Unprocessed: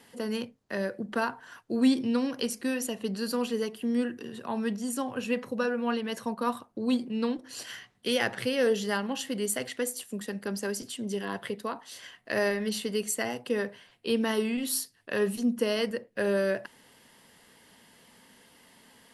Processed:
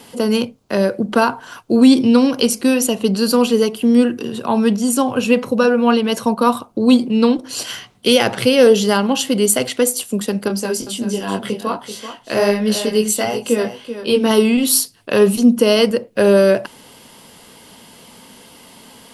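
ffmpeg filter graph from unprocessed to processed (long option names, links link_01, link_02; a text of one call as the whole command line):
ffmpeg -i in.wav -filter_complex "[0:a]asettb=1/sr,asplit=3[link_01][link_02][link_03];[link_01]atrim=end=10.484[link_04];[link_02]atrim=start=10.48:end=14.31,asetpts=PTS-STARTPTS,afade=type=in:duration=0.004:curve=qsin,afade=type=out:start_time=3.826:duration=0.004:curve=qsin,flanger=delay=18.5:depth=4.9:speed=1.4,aecho=1:1:385:0.282,atrim=end_sample=168903[link_05];[link_03]atrim=start=14.306[link_06];[link_04][link_05]acrossfade=duration=0.004:curve1=hsin:curve2=qsin[link_07];[link_07][link_06]acrossfade=duration=0.004:curve1=qsin:curve2=hsin,equalizer=frequency=1800:width_type=o:width=0.31:gain=-11.5,alimiter=level_in=16.5dB:limit=-1dB:release=50:level=0:latency=1,volume=-1dB" out.wav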